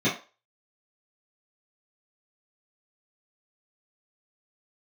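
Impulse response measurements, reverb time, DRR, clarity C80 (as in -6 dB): 0.35 s, -11.0 dB, 15.0 dB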